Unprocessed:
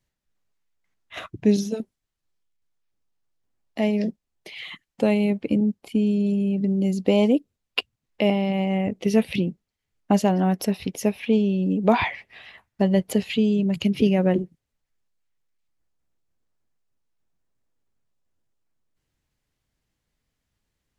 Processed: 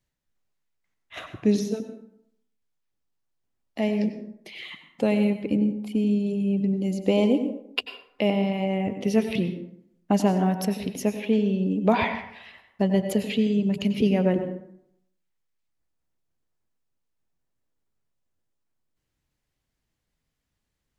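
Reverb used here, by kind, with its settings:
dense smooth reverb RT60 0.73 s, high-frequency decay 0.55×, pre-delay 80 ms, DRR 8 dB
level −2.5 dB

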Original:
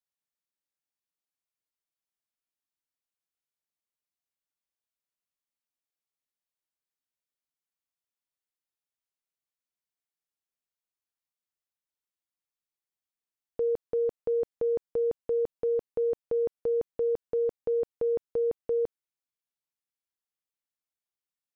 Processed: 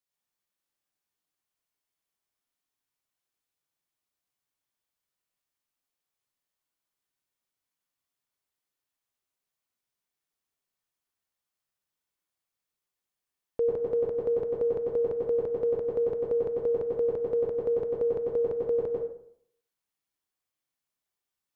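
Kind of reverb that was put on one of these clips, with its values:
dense smooth reverb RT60 0.64 s, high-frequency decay 0.55×, pre-delay 85 ms, DRR −2.5 dB
level +1.5 dB

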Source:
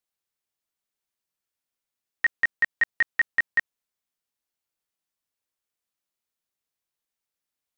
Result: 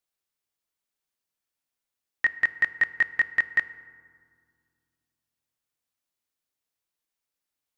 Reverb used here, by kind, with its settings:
feedback delay network reverb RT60 2 s, low-frequency decay 1.55×, high-frequency decay 0.45×, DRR 13.5 dB

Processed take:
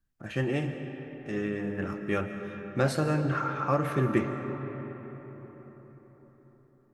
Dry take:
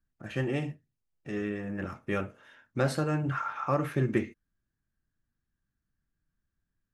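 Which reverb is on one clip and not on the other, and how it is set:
comb and all-pass reverb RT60 5 s, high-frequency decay 0.45×, pre-delay 95 ms, DRR 7 dB
level +1.5 dB

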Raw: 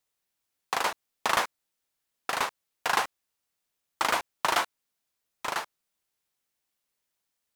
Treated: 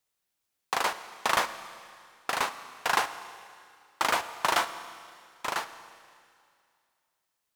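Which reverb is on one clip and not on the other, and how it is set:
four-comb reverb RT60 2.3 s, combs from 27 ms, DRR 12 dB

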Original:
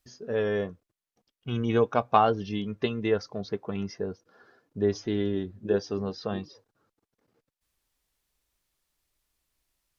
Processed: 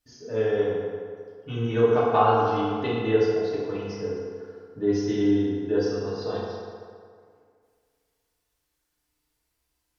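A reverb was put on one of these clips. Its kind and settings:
feedback delay network reverb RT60 2.1 s, low-frequency decay 0.8×, high-frequency decay 0.6×, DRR −9 dB
level −7 dB

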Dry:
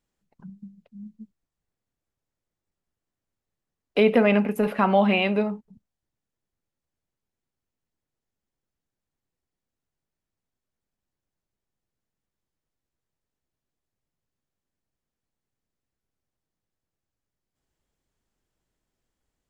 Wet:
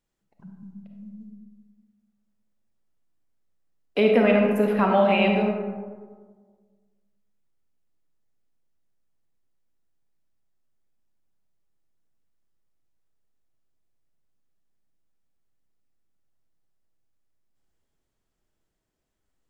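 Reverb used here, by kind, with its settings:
comb and all-pass reverb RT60 1.6 s, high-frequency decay 0.35×, pre-delay 10 ms, DRR 1.5 dB
level −2 dB

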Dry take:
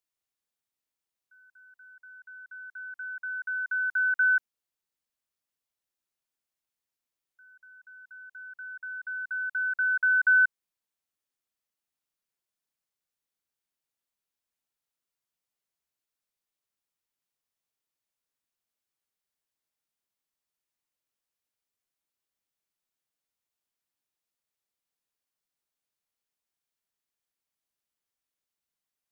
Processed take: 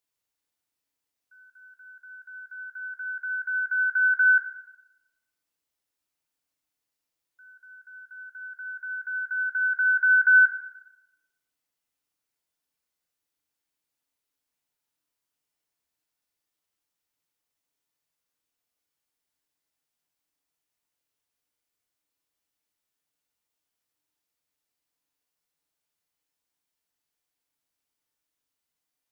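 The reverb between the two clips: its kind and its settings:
feedback delay network reverb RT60 0.93 s, low-frequency decay 1×, high-frequency decay 0.9×, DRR 2 dB
level +2 dB

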